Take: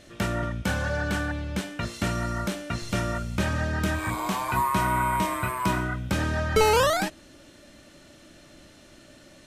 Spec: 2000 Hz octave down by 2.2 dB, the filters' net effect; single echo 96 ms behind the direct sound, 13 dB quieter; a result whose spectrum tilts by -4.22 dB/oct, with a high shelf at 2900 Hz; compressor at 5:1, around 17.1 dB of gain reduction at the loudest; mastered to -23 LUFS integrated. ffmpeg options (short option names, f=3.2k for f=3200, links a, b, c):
-af "equalizer=f=2k:t=o:g=-6.5,highshelf=f=2.9k:g=9,acompressor=threshold=-36dB:ratio=5,aecho=1:1:96:0.224,volume=16dB"